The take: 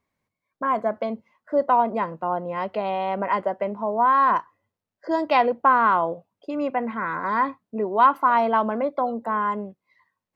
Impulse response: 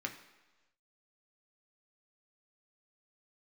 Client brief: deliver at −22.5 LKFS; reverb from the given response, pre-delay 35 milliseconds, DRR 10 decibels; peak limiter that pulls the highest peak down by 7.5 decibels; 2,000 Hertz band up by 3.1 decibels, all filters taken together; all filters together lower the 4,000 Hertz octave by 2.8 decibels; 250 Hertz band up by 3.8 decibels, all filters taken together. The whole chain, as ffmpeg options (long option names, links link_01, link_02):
-filter_complex "[0:a]equalizer=frequency=250:width_type=o:gain=4.5,equalizer=frequency=2000:width_type=o:gain=5.5,equalizer=frequency=4000:width_type=o:gain=-7,alimiter=limit=-11.5dB:level=0:latency=1,asplit=2[link_01][link_02];[1:a]atrim=start_sample=2205,adelay=35[link_03];[link_02][link_03]afir=irnorm=-1:irlink=0,volume=-11.5dB[link_04];[link_01][link_04]amix=inputs=2:normalize=0,volume=0.5dB"